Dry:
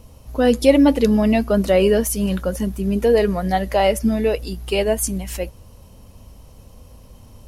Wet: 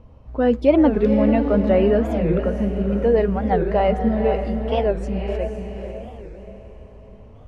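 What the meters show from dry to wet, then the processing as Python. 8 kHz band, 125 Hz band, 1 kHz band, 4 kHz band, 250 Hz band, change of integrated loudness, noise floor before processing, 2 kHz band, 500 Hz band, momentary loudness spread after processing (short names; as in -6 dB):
under -25 dB, +1.0 dB, -0.5 dB, -10.5 dB, -1.0 dB, -1.0 dB, -46 dBFS, -5.0 dB, -1.0 dB, 16 LU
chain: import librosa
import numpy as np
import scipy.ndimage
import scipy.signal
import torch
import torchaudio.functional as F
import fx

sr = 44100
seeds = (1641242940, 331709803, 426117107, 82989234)

y = scipy.signal.sosfilt(scipy.signal.butter(2, 1800.0, 'lowpass', fs=sr, output='sos'), x)
y = fx.echo_diffused(y, sr, ms=496, feedback_pct=44, wet_db=-6.0)
y = fx.record_warp(y, sr, rpm=45.0, depth_cents=250.0)
y = y * librosa.db_to_amplitude(-2.0)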